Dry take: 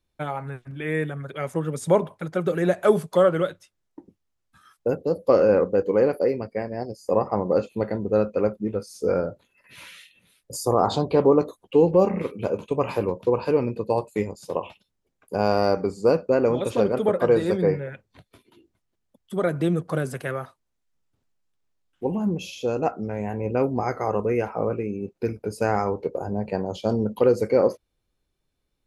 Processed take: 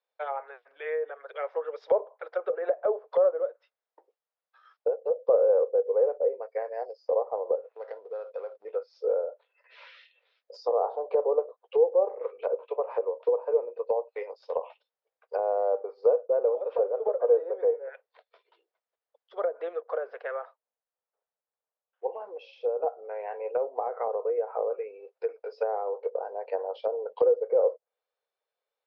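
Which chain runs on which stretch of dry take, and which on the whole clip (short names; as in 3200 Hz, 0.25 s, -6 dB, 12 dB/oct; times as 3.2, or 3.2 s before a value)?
7.55–8.65 median filter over 15 samples + compressor 5:1, threshold -29 dBFS
19.8–23.2 high shelf 4200 Hz -12 dB + mismatched tape noise reduction decoder only
whole clip: Chebyshev band-pass 460–5300 Hz, order 5; treble ducked by the level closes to 620 Hz, closed at -22.5 dBFS; high shelf 2300 Hz -12 dB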